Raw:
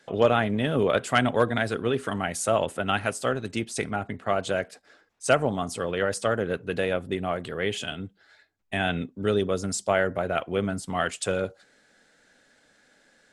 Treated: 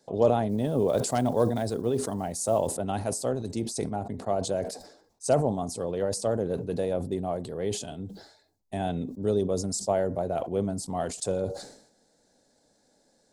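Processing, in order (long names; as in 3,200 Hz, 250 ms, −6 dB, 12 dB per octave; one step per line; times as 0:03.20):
0:00.49–0:02.75: one scale factor per block 7 bits
flat-topped bell 2,000 Hz −16 dB
level that may fall only so fast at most 82 dB per second
level −1.5 dB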